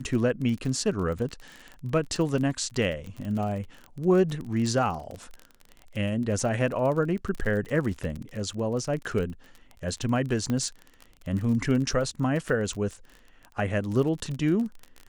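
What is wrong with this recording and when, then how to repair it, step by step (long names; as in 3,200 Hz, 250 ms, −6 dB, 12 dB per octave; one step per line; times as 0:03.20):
surface crackle 33 per second −32 dBFS
0:07.65: drop-out 2.2 ms
0:10.50: click −17 dBFS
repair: click removal
repair the gap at 0:07.65, 2.2 ms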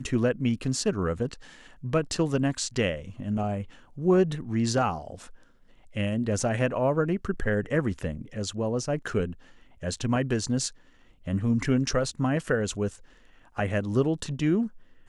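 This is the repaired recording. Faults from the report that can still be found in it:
0:10.50: click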